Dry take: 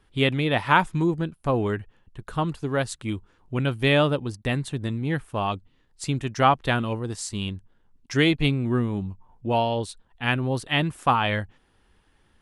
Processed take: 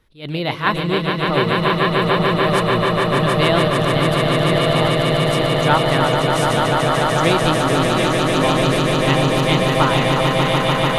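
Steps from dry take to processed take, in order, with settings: regenerating reverse delay 0.665 s, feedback 66%, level -6 dB; swelling echo 0.166 s, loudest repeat 8, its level -5.5 dB; varispeed +13%; attack slew limiter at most 200 dB/s; gain +1 dB

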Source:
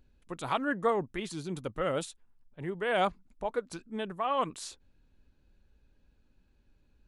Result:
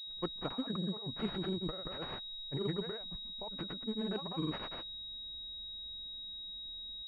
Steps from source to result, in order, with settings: negative-ratio compressor -36 dBFS, ratio -0.5; grains 0.1 s, grains 20/s, spray 0.139 s, pitch spread up and down by 0 st; pulse-width modulation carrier 3800 Hz

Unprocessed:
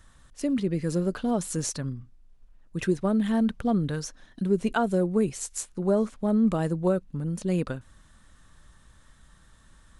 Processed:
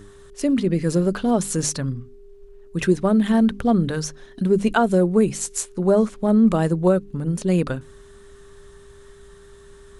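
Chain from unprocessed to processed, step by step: buzz 100 Hz, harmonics 4, -48 dBFS -2 dB/oct; notches 50/100/150/200/250/300 Hz; gain +7 dB

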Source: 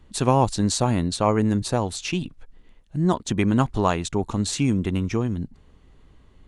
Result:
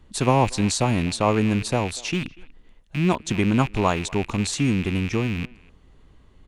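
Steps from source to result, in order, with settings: rattling part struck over -37 dBFS, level -21 dBFS; speakerphone echo 0.24 s, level -21 dB

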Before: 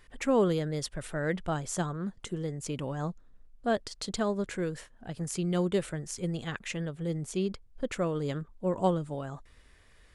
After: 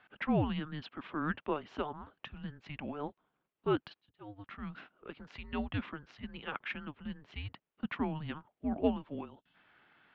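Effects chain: mistuned SSB -300 Hz 500–3600 Hz; 3.89–4.7 auto swell 0.758 s; 9.25–9.55 spectral gain 300–2600 Hz -11 dB

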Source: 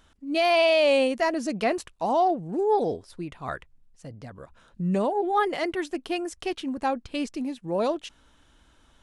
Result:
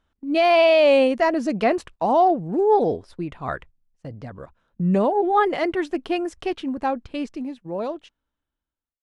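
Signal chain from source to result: ending faded out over 2.87 s; gate -47 dBFS, range -16 dB; LPF 2300 Hz 6 dB/oct; gain +5.5 dB

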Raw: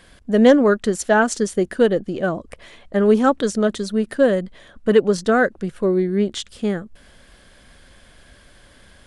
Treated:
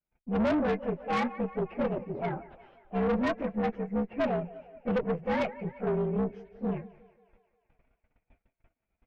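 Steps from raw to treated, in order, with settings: inharmonic rescaling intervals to 121%; gate -49 dBFS, range -32 dB; LPF 2100 Hz 24 dB/oct; thinning echo 0.178 s, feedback 64%, high-pass 330 Hz, level -18 dB; tube stage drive 19 dB, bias 0.45; gain -4.5 dB

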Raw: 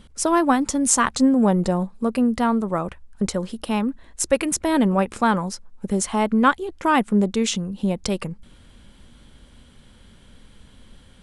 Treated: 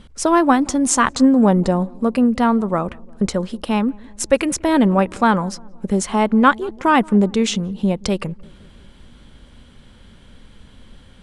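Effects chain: high shelf 9000 Hz -11.5 dB; on a send: darkening echo 0.175 s, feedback 64%, low-pass 910 Hz, level -23.5 dB; on the sum: gain +4 dB

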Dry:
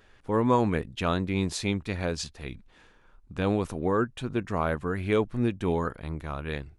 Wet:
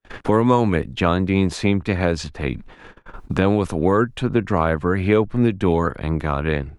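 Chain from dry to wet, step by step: high shelf 4300 Hz -6.5 dB, from 4.27 s -12 dB; gate -55 dBFS, range -60 dB; three-band squash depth 70%; gain +8.5 dB

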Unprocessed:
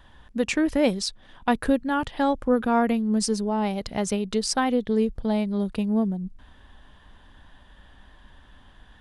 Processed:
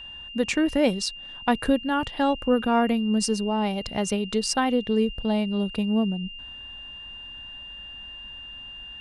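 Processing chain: whine 2800 Hz -38 dBFS; added harmonics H 2 -29 dB, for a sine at -8 dBFS

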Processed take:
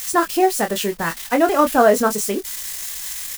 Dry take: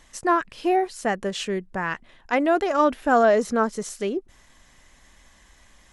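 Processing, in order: switching spikes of -23 dBFS; time stretch by phase-locked vocoder 0.57×; doubler 24 ms -7.5 dB; gain +4.5 dB

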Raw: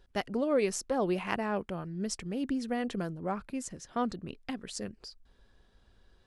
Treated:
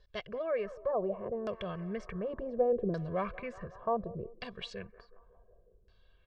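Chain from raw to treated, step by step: Doppler pass-by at 2.82, 18 m/s, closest 16 m; high shelf 7600 Hz -5.5 dB; comb 1.8 ms, depth 98%; in parallel at +2.5 dB: limiter -37.5 dBFS, peak gain reduction 17.5 dB; on the sum: wow and flutter 17 cents; on a send: band-limited delay 0.184 s, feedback 67%, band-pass 740 Hz, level -17.5 dB; on the sum: LFO low-pass saw down 0.68 Hz 330–5100 Hz; gain -4 dB

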